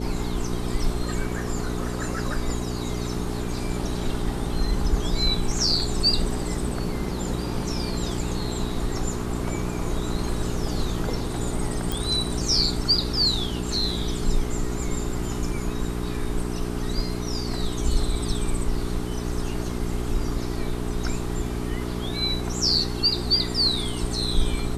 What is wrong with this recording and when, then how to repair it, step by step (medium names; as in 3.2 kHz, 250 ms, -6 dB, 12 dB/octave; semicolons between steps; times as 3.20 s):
hum 60 Hz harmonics 7 -30 dBFS
11.92 s: pop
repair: de-click; de-hum 60 Hz, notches 7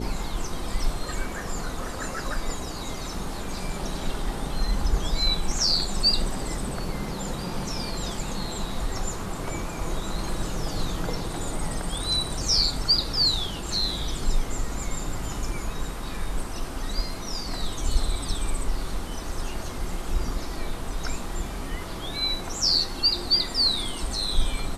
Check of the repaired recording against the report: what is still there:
nothing left